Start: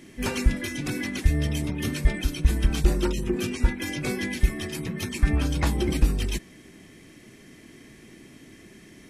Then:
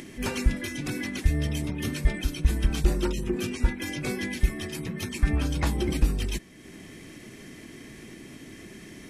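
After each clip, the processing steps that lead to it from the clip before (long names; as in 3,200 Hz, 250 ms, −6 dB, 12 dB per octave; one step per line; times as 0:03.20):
upward compression, threshold −34 dBFS
level −2 dB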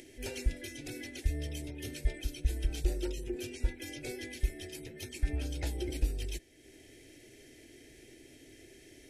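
phaser with its sweep stopped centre 460 Hz, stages 4
level −7 dB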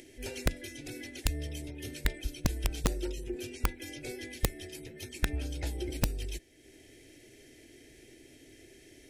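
wrap-around overflow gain 19 dB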